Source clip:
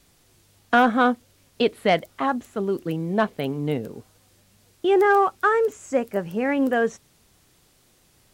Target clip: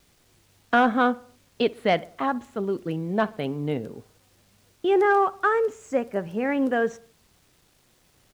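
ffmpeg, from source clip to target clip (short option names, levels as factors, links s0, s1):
-filter_complex "[0:a]lowpass=f=12000:w=0.5412,lowpass=f=12000:w=1.3066,highshelf=f=9100:g=-10.5,acrusher=bits=9:mix=0:aa=0.000001,asplit=2[s0][s1];[s1]adelay=63,lowpass=f=2200:p=1,volume=0.0944,asplit=2[s2][s3];[s3]adelay=63,lowpass=f=2200:p=1,volume=0.5,asplit=2[s4][s5];[s5]adelay=63,lowpass=f=2200:p=1,volume=0.5,asplit=2[s6][s7];[s7]adelay=63,lowpass=f=2200:p=1,volume=0.5[s8];[s0][s2][s4][s6][s8]amix=inputs=5:normalize=0,volume=0.794"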